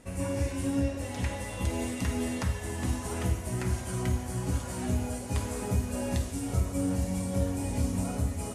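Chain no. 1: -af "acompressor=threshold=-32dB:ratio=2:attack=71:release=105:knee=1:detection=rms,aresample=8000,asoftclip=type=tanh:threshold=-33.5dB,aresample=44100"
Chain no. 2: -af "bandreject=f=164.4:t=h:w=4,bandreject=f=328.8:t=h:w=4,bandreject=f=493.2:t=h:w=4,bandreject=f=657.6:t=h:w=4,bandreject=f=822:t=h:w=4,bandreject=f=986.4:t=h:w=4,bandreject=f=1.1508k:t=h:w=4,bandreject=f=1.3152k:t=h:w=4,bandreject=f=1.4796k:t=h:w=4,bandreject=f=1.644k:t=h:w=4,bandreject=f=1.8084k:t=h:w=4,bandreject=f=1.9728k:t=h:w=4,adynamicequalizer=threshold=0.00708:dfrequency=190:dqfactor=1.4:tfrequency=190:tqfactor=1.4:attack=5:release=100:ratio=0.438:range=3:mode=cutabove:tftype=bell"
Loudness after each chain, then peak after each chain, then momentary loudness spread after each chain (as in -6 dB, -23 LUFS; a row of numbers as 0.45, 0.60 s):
-38.5, -33.0 LUFS; -31.0, -16.5 dBFS; 1, 2 LU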